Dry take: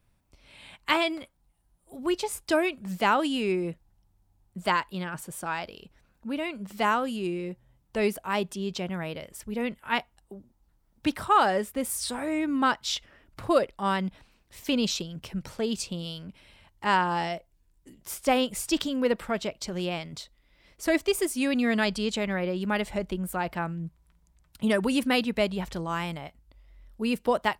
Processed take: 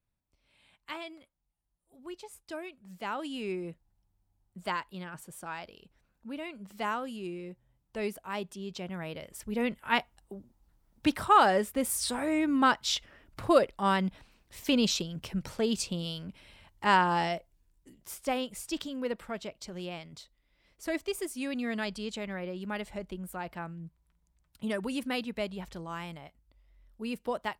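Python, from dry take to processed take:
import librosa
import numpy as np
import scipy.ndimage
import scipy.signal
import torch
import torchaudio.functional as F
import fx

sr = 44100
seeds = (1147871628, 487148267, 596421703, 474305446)

y = fx.gain(x, sr, db=fx.line((2.85, -16.0), (3.45, -8.0), (8.67, -8.0), (9.62, 0.0), (17.34, 0.0), (18.43, -8.5)))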